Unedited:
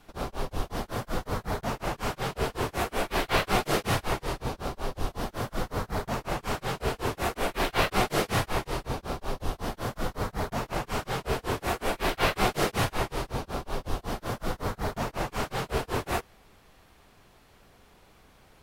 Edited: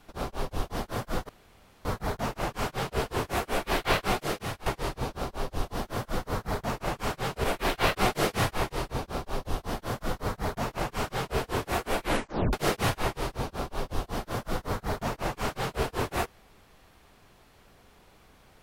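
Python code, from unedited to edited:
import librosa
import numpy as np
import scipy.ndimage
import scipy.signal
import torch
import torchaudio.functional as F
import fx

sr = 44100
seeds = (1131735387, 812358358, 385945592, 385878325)

y = fx.edit(x, sr, fx.insert_room_tone(at_s=1.29, length_s=0.56),
    fx.fade_out_to(start_s=3.33, length_s=0.77, floor_db=-12.5),
    fx.cut(start_s=6.88, length_s=0.51),
    fx.tape_stop(start_s=11.98, length_s=0.5), tone=tone)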